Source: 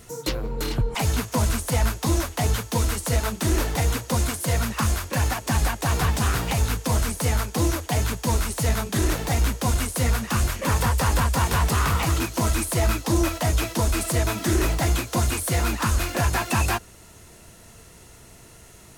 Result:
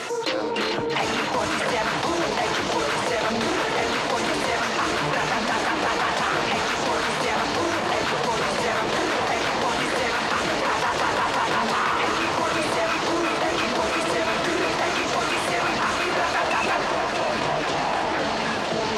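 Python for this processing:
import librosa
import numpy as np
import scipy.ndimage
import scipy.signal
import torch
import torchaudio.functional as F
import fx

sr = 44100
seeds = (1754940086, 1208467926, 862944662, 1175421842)

y = scipy.signal.sosfilt(scipy.signal.butter(2, 490.0, 'highpass', fs=sr, output='sos'), x)
y = fx.echo_alternate(y, sr, ms=318, hz=1400.0, feedback_pct=83, wet_db=-10.0)
y = fx.echo_pitch(y, sr, ms=168, semitones=-7, count=3, db_per_echo=-6.0)
y = scipy.signal.sosfilt(scipy.signal.butter(2, 3700.0, 'lowpass', fs=sr, output='sos'), y)
y = fx.env_flatten(y, sr, amount_pct=70)
y = y * librosa.db_to_amplitude(1.5)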